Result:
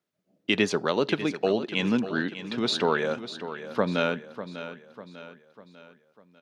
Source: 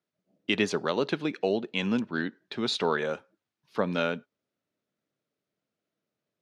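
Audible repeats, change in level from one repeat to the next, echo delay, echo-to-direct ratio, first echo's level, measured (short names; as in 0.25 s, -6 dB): 4, -6.5 dB, 0.597 s, -11.0 dB, -12.0 dB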